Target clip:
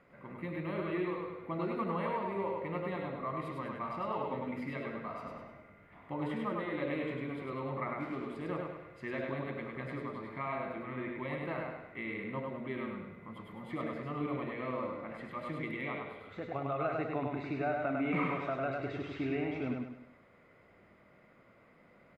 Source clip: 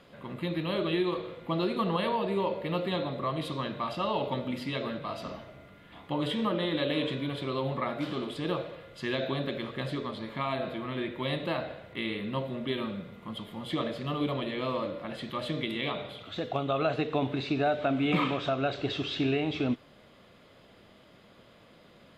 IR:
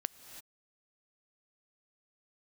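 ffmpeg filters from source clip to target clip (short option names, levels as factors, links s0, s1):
-af "highshelf=f=2600:t=q:w=3:g=-8.5,bandreject=f=1700:w=9.7,aecho=1:1:101|202|303|404|505:0.708|0.297|0.125|0.0525|0.022,volume=0.398"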